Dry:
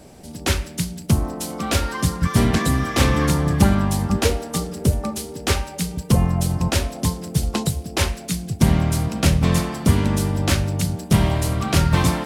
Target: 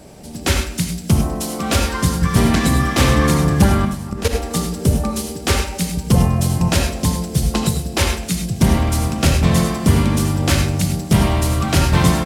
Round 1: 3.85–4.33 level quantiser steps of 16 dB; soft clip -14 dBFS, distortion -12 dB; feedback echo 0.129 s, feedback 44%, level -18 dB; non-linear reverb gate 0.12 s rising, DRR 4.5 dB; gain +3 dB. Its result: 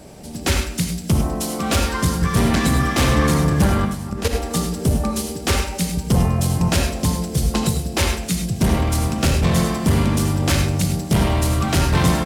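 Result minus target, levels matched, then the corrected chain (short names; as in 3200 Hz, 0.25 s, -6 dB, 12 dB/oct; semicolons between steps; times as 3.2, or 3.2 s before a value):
soft clip: distortion +12 dB
3.85–4.33 level quantiser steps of 16 dB; soft clip -4.5 dBFS, distortion -24 dB; feedback echo 0.129 s, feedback 44%, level -18 dB; non-linear reverb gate 0.12 s rising, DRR 4.5 dB; gain +3 dB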